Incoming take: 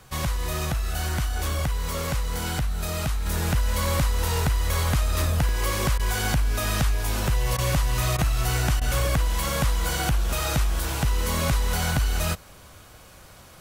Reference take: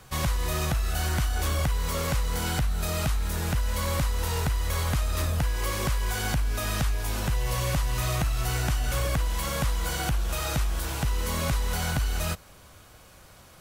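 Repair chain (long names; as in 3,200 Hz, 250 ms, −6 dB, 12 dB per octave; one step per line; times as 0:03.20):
repair the gap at 0:02.58/0:05.49/0:07.28/0:07.72/0:10.32/0:11.92, 1.2 ms
repair the gap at 0:05.98/0:07.57/0:08.17/0:08.80, 13 ms
level correction −3.5 dB, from 0:03.26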